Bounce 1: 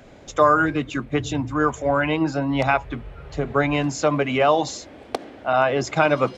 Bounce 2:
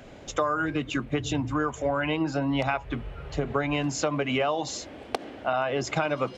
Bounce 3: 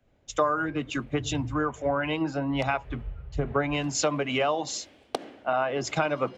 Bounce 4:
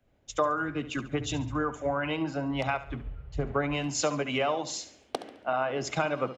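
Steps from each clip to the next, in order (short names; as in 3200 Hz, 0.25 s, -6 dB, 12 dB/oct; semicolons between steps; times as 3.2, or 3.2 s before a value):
bell 2900 Hz +4 dB 0.24 oct; compressor 6:1, threshold -23 dBFS, peak gain reduction 11.5 dB
three-band expander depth 100%
feedback echo 70 ms, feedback 39%, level -14 dB; gain -2.5 dB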